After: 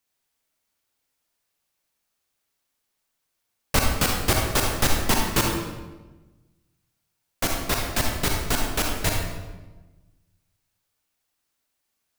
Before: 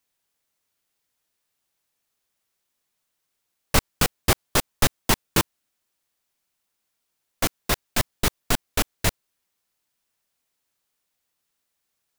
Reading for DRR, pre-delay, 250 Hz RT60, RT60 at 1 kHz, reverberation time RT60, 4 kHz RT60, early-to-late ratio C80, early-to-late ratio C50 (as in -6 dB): 0.0 dB, 39 ms, 1.5 s, 1.1 s, 1.2 s, 0.85 s, 4.0 dB, 1.5 dB